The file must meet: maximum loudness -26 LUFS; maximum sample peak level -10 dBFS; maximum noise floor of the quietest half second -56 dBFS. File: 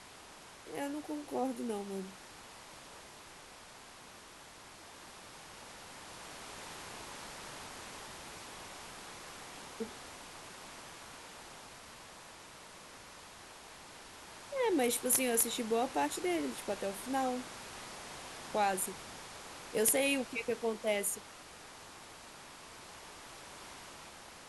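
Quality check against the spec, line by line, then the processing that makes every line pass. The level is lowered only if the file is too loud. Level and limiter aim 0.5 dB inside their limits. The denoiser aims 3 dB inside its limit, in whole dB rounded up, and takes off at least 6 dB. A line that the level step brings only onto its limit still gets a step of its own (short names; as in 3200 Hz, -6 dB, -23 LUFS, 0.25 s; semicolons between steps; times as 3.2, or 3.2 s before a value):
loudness -36.5 LUFS: OK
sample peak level -14.5 dBFS: OK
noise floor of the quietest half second -54 dBFS: fail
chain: denoiser 6 dB, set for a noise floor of -54 dBFS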